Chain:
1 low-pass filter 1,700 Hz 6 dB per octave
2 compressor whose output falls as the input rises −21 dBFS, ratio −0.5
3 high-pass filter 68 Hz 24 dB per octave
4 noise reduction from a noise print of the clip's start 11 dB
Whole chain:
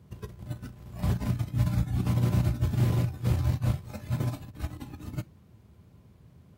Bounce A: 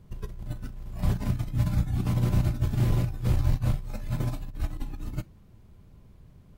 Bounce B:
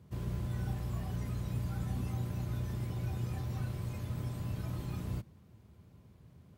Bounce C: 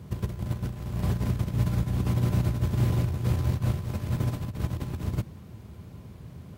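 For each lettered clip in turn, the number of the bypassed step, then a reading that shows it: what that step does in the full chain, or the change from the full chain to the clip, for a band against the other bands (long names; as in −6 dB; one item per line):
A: 3, change in momentary loudness spread −1 LU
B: 2, change in crest factor −4.0 dB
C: 4, change in momentary loudness spread +5 LU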